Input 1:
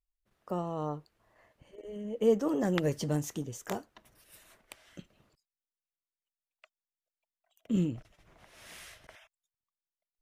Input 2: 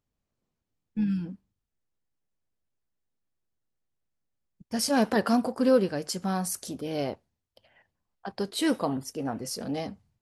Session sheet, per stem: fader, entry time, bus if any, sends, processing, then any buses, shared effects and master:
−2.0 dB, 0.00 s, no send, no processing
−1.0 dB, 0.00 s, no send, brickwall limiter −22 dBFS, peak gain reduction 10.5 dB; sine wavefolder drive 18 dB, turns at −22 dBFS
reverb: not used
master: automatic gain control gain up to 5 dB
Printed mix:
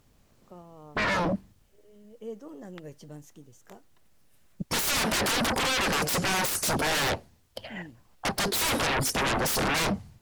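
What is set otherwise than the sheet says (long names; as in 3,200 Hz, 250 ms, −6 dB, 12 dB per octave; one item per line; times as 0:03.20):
stem 1 −2.0 dB → −14.0 dB
master: missing automatic gain control gain up to 5 dB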